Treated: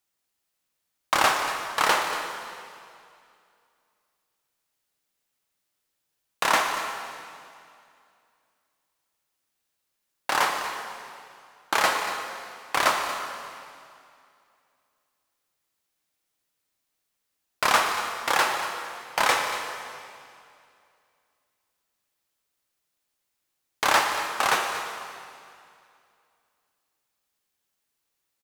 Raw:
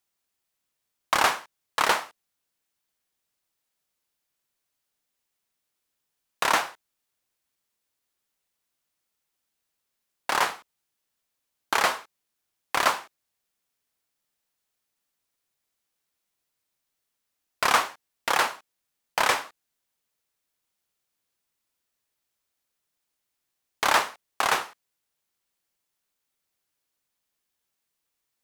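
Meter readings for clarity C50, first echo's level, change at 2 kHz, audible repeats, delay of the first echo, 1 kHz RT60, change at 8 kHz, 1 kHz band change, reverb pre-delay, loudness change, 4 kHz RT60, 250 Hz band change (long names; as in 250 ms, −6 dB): 4.0 dB, −13.5 dB, +2.0 dB, 1, 234 ms, 2.4 s, +2.0 dB, +2.0 dB, 3 ms, 0.0 dB, 2.3 s, +2.0 dB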